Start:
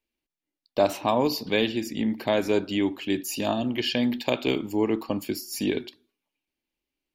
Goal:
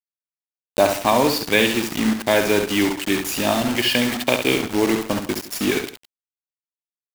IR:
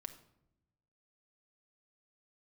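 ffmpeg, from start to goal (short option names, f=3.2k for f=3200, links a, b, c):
-filter_complex "[0:a]adynamicequalizer=threshold=0.00708:dfrequency=1800:dqfactor=1.1:tfrequency=1800:tqfactor=1.1:attack=5:release=100:ratio=0.375:range=4:mode=boostabove:tftype=bell,acrusher=bits=4:mix=0:aa=0.000001,asplit=2[a][b];[b]aecho=0:1:68|162:0.447|0.119[c];[a][c]amix=inputs=2:normalize=0,volume=4dB"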